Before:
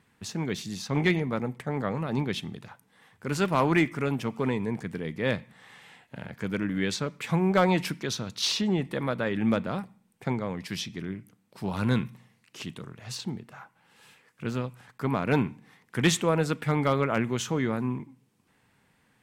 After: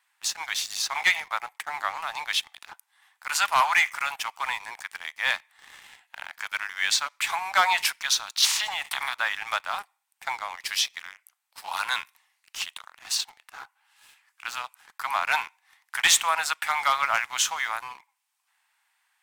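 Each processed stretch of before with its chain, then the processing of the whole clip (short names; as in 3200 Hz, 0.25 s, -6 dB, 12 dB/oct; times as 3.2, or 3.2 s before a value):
8.44–9.13 spectral limiter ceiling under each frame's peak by 22 dB + Bessel high-pass 230 Hz + compressor 3:1, threshold -34 dBFS
whole clip: steep high-pass 750 Hz 48 dB/oct; tilt +1.5 dB/oct; sample leveller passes 2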